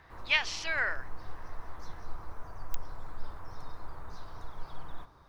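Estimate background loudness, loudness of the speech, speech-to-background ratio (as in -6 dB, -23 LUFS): -48.5 LUFS, -30.5 LUFS, 18.0 dB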